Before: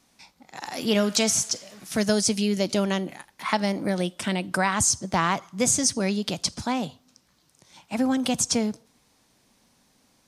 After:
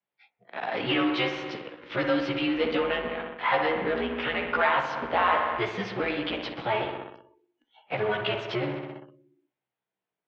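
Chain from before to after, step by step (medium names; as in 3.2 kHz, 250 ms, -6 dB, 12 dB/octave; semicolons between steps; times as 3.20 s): short-time spectra conjugated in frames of 34 ms; on a send: feedback echo behind a low-pass 63 ms, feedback 71%, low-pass 2.3 kHz, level -7 dB; on the sum: dynamic bell 350 Hz, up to -5 dB, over -37 dBFS, Q 0.73; in parallel at -12 dB: fuzz box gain 34 dB, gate -43 dBFS; on the sum: spectral noise reduction 20 dB; mistuned SSB -110 Hz 340–3300 Hz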